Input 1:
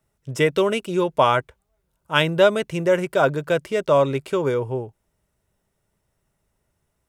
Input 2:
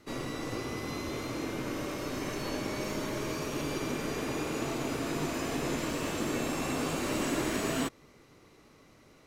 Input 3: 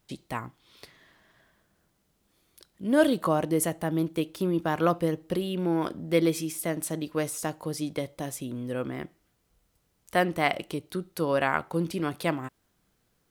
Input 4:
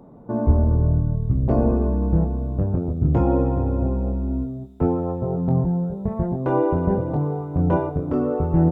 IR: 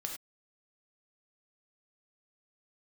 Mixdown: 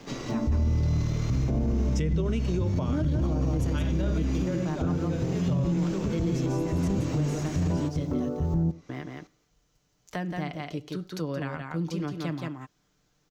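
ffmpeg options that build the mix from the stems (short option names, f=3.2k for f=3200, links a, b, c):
-filter_complex "[0:a]adelay=1600,volume=0.5dB,asplit=2[a][b];[b]volume=-9dB[c];[1:a]volume=0.5dB,asplit=2[d][e];[e]volume=-16.5dB[f];[2:a]aecho=1:1:6.7:0.42,volume=-2dB,asplit=3[g][h][i];[g]atrim=end=8.29,asetpts=PTS-STARTPTS,afade=t=out:st=8.286:d=0.004:c=hsin[j];[h]atrim=start=8.29:end=8.89,asetpts=PTS-STARTPTS,volume=0[k];[i]atrim=start=8.89,asetpts=PTS-STARTPTS,afade=t=in:d=0.004:c=hsin[l];[j][k][l]concat=n=3:v=0:a=1,asplit=4[m][n][o][p];[n]volume=-16dB[q];[o]volume=-3.5dB[r];[3:a]acrusher=bits=7:mix=0:aa=0.000001,volume=-3dB,asplit=2[s][t];[t]volume=-14.5dB[u];[p]apad=whole_len=383120[v];[a][v]sidechaincompress=threshold=-47dB:ratio=8:attack=5.8:release=517[w];[4:a]atrim=start_sample=2205[x];[c][q][u]amix=inputs=3:normalize=0[y];[y][x]afir=irnorm=-1:irlink=0[z];[f][r]amix=inputs=2:normalize=0,aecho=0:1:173:1[aa];[w][d][m][s][z][aa]amix=inputs=6:normalize=0,highshelf=f=7.8k:t=q:w=3:g=-7.5,acrossover=split=260[ab][ac];[ac]acompressor=threshold=-35dB:ratio=5[ad];[ab][ad]amix=inputs=2:normalize=0,alimiter=limit=-19dB:level=0:latency=1:release=23"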